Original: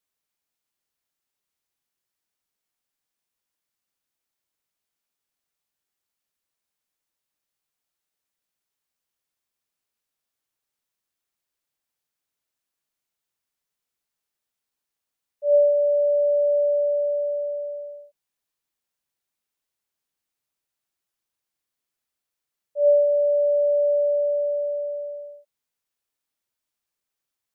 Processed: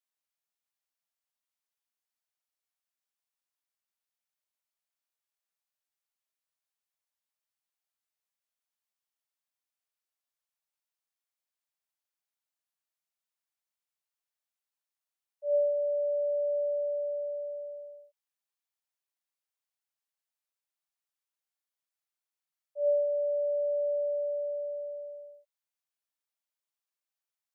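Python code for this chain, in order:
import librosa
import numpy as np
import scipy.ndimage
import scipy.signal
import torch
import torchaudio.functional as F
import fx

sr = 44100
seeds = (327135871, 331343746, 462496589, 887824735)

y = scipy.signal.sosfilt(scipy.signal.butter(6, 540.0, 'highpass', fs=sr, output='sos'), x)
y = y * librosa.db_to_amplitude(-8.0)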